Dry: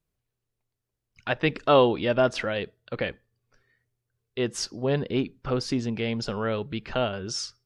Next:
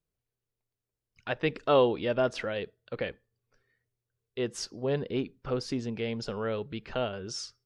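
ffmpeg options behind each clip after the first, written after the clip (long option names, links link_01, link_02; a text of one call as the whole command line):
ffmpeg -i in.wav -af "equalizer=frequency=460:width_type=o:width=0.52:gain=4,volume=-6dB" out.wav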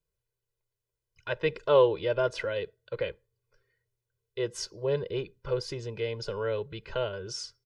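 ffmpeg -i in.wav -af "aecho=1:1:2:0.99,volume=-3dB" out.wav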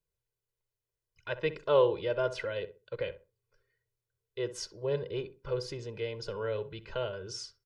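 ffmpeg -i in.wav -filter_complex "[0:a]asplit=2[link_01][link_02];[link_02]adelay=64,lowpass=frequency=1300:poles=1,volume=-11.5dB,asplit=2[link_03][link_04];[link_04]adelay=64,lowpass=frequency=1300:poles=1,volume=0.26,asplit=2[link_05][link_06];[link_06]adelay=64,lowpass=frequency=1300:poles=1,volume=0.26[link_07];[link_01][link_03][link_05][link_07]amix=inputs=4:normalize=0,volume=-3.5dB" out.wav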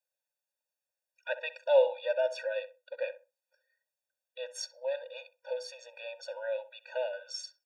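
ffmpeg -i in.wav -af "afftfilt=real='re*eq(mod(floor(b*sr/1024/480),2),1)':imag='im*eq(mod(floor(b*sr/1024/480),2),1)':win_size=1024:overlap=0.75,volume=3dB" out.wav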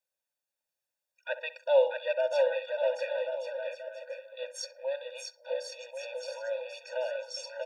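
ffmpeg -i in.wav -af "aecho=1:1:640|1088|1402|1621|1775:0.631|0.398|0.251|0.158|0.1" out.wav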